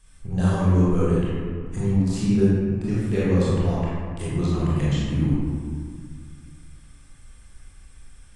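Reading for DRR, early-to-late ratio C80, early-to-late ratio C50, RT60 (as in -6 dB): -9.0 dB, -1.0 dB, -4.0 dB, 1.9 s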